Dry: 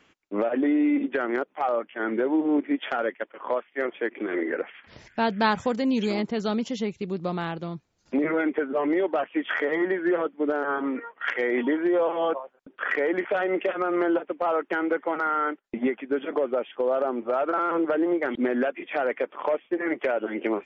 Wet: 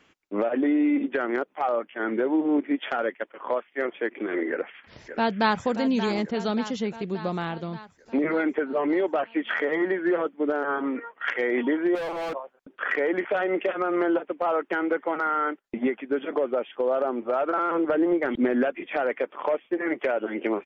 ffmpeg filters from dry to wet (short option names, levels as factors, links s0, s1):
-filter_complex "[0:a]asplit=2[s0][s1];[s1]afade=t=in:st=4.5:d=0.01,afade=t=out:st=5.65:d=0.01,aecho=0:1:580|1160|1740|2320|2900|3480|4060|4640:0.298538|0.19405|0.126132|0.0819861|0.0532909|0.0346391|0.0225154|0.014635[s2];[s0][s2]amix=inputs=2:normalize=0,asettb=1/sr,asplit=3[s3][s4][s5];[s3]atrim=end=11.954[s6];[s4]atrim=start=11.95:end=12.35,asetpts=PTS-STARTPTS,afade=t=in:d=0.004:c=qsin,afade=t=out:st=0.396:d=0.004:c=qsin,asoftclip=type=hard:threshold=0.0376[s7];[s5]atrim=start=12.346[s8];[s6][s7]acrossfade=d=0.004:c1=hsin:c2=qsin[s9];[s9][s8]acrossfade=d=0.004:c1=qsin:c2=hsin,asettb=1/sr,asplit=3[s10][s11][s12];[s10]atrim=end=17.864[s13];[s11]atrim=start=17.86:end=18.97,asetpts=PTS-STARTPTS,afade=t=in:d=0.004:c=qsin,afade=t=out:st=1.106:d=0.004:c=qsin,lowshelf=f=150:g=9.5[s14];[s12]atrim=start=18.966[s15];[s13][s14]acrossfade=d=0.004:c1=hsin:c2=qsin[s16];[s16][s15]acrossfade=d=0.004:c1=qsin:c2=hsin"